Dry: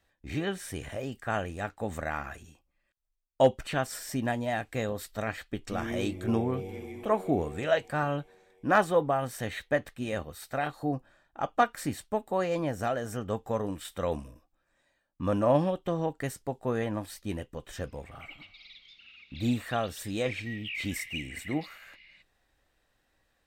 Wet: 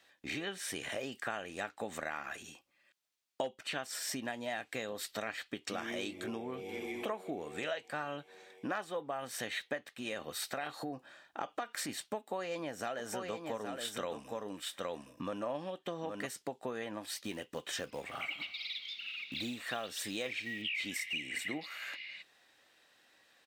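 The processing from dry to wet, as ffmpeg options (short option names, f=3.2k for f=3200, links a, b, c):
-filter_complex "[0:a]asplit=3[a][b][c];[a]afade=t=out:st=9.97:d=0.02[d];[b]acompressor=threshold=-34dB:ratio=2.5:attack=3.2:release=140:knee=1:detection=peak,afade=t=in:st=9.97:d=0.02,afade=t=out:st=11.88:d=0.02[e];[c]afade=t=in:st=11.88:d=0.02[f];[d][e][f]amix=inputs=3:normalize=0,asplit=3[g][h][i];[g]afade=t=out:st=12.98:d=0.02[j];[h]aecho=1:1:817:0.422,afade=t=in:st=12.98:d=0.02,afade=t=out:st=16.25:d=0.02[k];[i]afade=t=in:st=16.25:d=0.02[l];[j][k][l]amix=inputs=3:normalize=0,asettb=1/sr,asplit=3[m][n][o];[m]atrim=end=17.244[p];[n]atrim=start=17.24:end=20.62,asetpts=PTS-STARTPTS,afade=t=in:d=0.004:c=qsin,afade=t=out:st=3.376:d=0.004:c=qsin,acrusher=bits=7:mode=log:mix=0:aa=0.000001[q];[o]atrim=start=20.616[r];[p][q]acrossfade=d=0.004:c1=hsin:c2=qsin[s];[s][r]acrossfade=d=0.004:c1=qsin:c2=hsin,equalizer=f=3.6k:w=0.5:g=8,acompressor=threshold=-38dB:ratio=10,highpass=230,volume=3.5dB"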